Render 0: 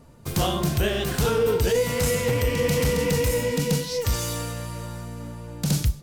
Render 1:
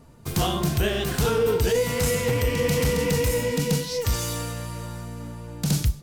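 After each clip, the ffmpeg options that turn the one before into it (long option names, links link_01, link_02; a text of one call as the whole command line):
ffmpeg -i in.wav -af "bandreject=frequency=550:width=12" out.wav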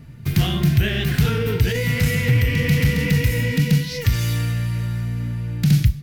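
ffmpeg -i in.wav -filter_complex "[0:a]equalizer=frequency=125:width_type=o:width=1:gain=10,equalizer=frequency=500:width_type=o:width=1:gain=-7,equalizer=frequency=1000:width_type=o:width=1:gain=-10,equalizer=frequency=2000:width_type=o:width=1:gain=8,equalizer=frequency=8000:width_type=o:width=1:gain=-9,asplit=2[link_01][link_02];[link_02]acompressor=threshold=-28dB:ratio=6,volume=-1dB[link_03];[link_01][link_03]amix=inputs=2:normalize=0" out.wav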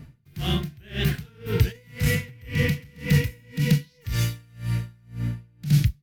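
ffmpeg -i in.wav -af "aeval=exprs='val(0)*pow(10,-32*(0.5-0.5*cos(2*PI*1.9*n/s))/20)':channel_layout=same" out.wav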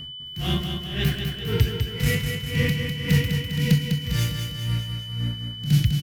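ffmpeg -i in.wav -filter_complex "[0:a]asplit=2[link_01][link_02];[link_02]aecho=0:1:201|402|603|804|1005|1206|1407|1608:0.501|0.291|0.169|0.0978|0.0567|0.0329|0.0191|0.0111[link_03];[link_01][link_03]amix=inputs=2:normalize=0,aeval=exprs='val(0)+0.0178*sin(2*PI*3000*n/s)':channel_layout=same" out.wav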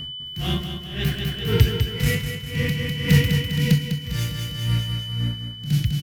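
ffmpeg -i in.wav -af "tremolo=f=0.61:d=0.51,volume=4dB" out.wav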